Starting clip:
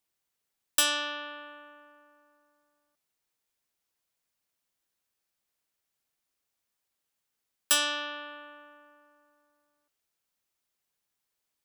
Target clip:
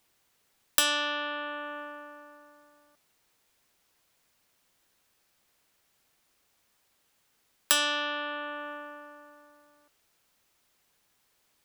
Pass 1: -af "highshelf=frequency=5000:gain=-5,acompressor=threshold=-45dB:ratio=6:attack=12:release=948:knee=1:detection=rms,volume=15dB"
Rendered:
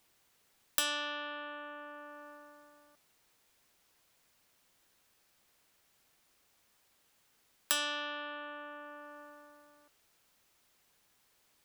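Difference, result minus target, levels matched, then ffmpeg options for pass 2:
downward compressor: peak gain reduction +7.5 dB
-af "highshelf=frequency=5000:gain=-5,acompressor=threshold=-36dB:ratio=6:attack=12:release=948:knee=1:detection=rms,volume=15dB"

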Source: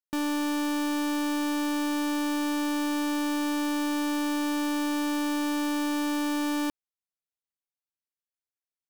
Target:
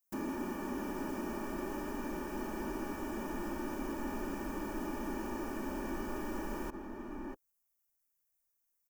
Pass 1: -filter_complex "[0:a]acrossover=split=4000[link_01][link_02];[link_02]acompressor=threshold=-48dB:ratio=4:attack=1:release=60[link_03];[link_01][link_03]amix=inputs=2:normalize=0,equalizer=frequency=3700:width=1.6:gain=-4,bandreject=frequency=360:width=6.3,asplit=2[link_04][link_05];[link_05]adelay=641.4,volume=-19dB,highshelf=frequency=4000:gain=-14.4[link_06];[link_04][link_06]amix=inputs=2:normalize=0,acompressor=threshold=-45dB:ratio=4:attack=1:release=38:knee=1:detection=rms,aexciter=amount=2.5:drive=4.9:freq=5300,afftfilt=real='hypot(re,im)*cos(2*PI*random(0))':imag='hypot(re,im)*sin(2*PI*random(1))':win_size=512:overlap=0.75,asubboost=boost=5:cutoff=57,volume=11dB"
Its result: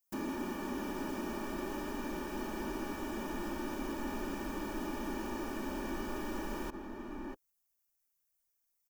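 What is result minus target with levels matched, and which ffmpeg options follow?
4,000 Hz band +5.0 dB
-filter_complex "[0:a]acrossover=split=4000[link_01][link_02];[link_02]acompressor=threshold=-48dB:ratio=4:attack=1:release=60[link_03];[link_01][link_03]amix=inputs=2:normalize=0,equalizer=frequency=3700:width=1.6:gain=-12,bandreject=frequency=360:width=6.3,asplit=2[link_04][link_05];[link_05]adelay=641.4,volume=-19dB,highshelf=frequency=4000:gain=-14.4[link_06];[link_04][link_06]amix=inputs=2:normalize=0,acompressor=threshold=-45dB:ratio=4:attack=1:release=38:knee=1:detection=rms,aexciter=amount=2.5:drive=4.9:freq=5300,afftfilt=real='hypot(re,im)*cos(2*PI*random(0))':imag='hypot(re,im)*sin(2*PI*random(1))':win_size=512:overlap=0.75,asubboost=boost=5:cutoff=57,volume=11dB"

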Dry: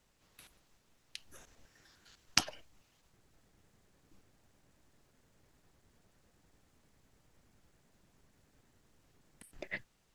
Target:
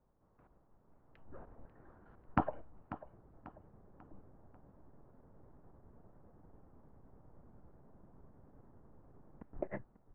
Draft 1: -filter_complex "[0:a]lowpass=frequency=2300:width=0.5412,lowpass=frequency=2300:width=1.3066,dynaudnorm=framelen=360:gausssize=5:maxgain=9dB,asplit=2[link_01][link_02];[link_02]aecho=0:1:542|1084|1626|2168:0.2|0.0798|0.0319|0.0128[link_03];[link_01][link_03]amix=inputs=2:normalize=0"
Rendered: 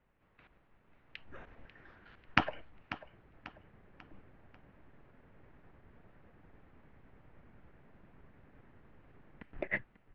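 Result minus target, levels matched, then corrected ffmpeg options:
2,000 Hz band +10.0 dB
-filter_complex "[0:a]lowpass=frequency=1100:width=0.5412,lowpass=frequency=1100:width=1.3066,dynaudnorm=framelen=360:gausssize=5:maxgain=9dB,asplit=2[link_01][link_02];[link_02]aecho=0:1:542|1084|1626|2168:0.2|0.0798|0.0319|0.0128[link_03];[link_01][link_03]amix=inputs=2:normalize=0"

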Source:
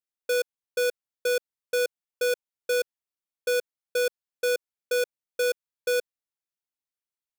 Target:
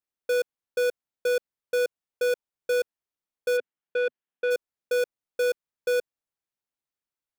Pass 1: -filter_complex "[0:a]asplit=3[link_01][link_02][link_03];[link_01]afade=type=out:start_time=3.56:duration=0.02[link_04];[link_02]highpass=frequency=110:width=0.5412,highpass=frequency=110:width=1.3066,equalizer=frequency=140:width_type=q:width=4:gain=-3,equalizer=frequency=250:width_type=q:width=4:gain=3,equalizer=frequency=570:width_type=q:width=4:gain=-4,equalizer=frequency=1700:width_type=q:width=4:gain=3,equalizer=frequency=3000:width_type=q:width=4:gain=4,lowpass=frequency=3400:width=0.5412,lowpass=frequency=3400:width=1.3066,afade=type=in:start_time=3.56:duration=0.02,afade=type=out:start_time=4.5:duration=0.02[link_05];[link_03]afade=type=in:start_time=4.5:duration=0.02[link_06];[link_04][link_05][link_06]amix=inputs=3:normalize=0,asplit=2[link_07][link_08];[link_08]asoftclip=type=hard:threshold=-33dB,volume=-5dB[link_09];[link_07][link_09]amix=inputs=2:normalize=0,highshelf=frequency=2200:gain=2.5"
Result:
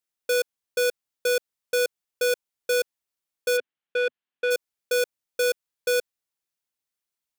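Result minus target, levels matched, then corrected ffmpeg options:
4,000 Hz band +6.0 dB
-filter_complex "[0:a]asplit=3[link_01][link_02][link_03];[link_01]afade=type=out:start_time=3.56:duration=0.02[link_04];[link_02]highpass=frequency=110:width=0.5412,highpass=frequency=110:width=1.3066,equalizer=frequency=140:width_type=q:width=4:gain=-3,equalizer=frequency=250:width_type=q:width=4:gain=3,equalizer=frequency=570:width_type=q:width=4:gain=-4,equalizer=frequency=1700:width_type=q:width=4:gain=3,equalizer=frequency=3000:width_type=q:width=4:gain=4,lowpass=frequency=3400:width=0.5412,lowpass=frequency=3400:width=1.3066,afade=type=in:start_time=3.56:duration=0.02,afade=type=out:start_time=4.5:duration=0.02[link_05];[link_03]afade=type=in:start_time=4.5:duration=0.02[link_06];[link_04][link_05][link_06]amix=inputs=3:normalize=0,asplit=2[link_07][link_08];[link_08]asoftclip=type=hard:threshold=-33dB,volume=-5dB[link_09];[link_07][link_09]amix=inputs=2:normalize=0,highshelf=frequency=2200:gain=-7.5"

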